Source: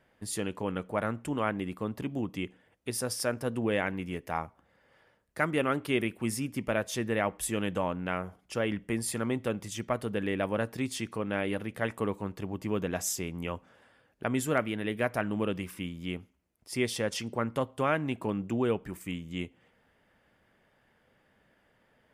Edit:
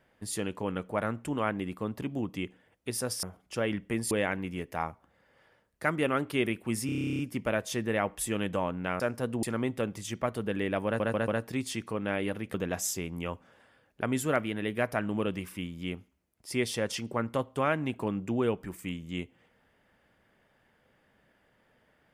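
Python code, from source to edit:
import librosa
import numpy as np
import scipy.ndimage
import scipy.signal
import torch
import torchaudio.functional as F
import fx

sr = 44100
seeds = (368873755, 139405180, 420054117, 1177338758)

y = fx.edit(x, sr, fx.swap(start_s=3.23, length_s=0.43, other_s=8.22, other_length_s=0.88),
    fx.stutter(start_s=6.41, slice_s=0.03, count=12),
    fx.stutter(start_s=10.53, slice_s=0.14, count=4),
    fx.cut(start_s=11.79, length_s=0.97), tone=tone)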